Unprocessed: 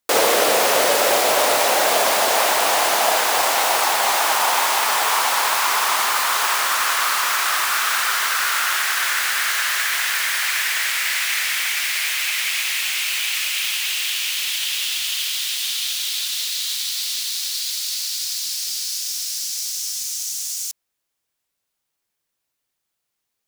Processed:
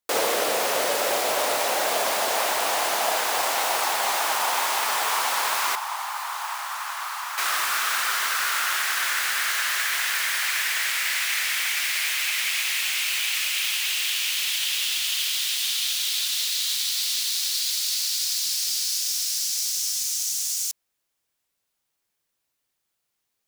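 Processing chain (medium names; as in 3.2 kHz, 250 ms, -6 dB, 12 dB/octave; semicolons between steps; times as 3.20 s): gain riding within 4 dB; 5.75–7.38 s: ladder high-pass 730 Hz, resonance 55%; trim -4 dB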